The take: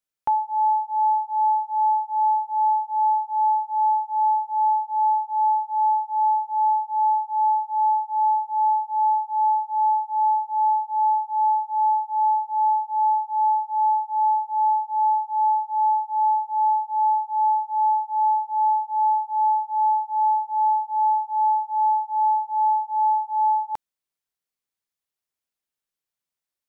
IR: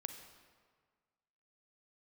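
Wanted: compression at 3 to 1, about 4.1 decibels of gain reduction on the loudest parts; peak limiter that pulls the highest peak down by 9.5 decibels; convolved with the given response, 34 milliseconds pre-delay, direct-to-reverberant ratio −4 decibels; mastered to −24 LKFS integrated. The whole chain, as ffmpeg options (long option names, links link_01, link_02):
-filter_complex "[0:a]acompressor=threshold=-23dB:ratio=3,alimiter=level_in=1dB:limit=-24dB:level=0:latency=1,volume=-1dB,asplit=2[link_01][link_02];[1:a]atrim=start_sample=2205,adelay=34[link_03];[link_02][link_03]afir=irnorm=-1:irlink=0,volume=6.5dB[link_04];[link_01][link_04]amix=inputs=2:normalize=0,volume=6dB"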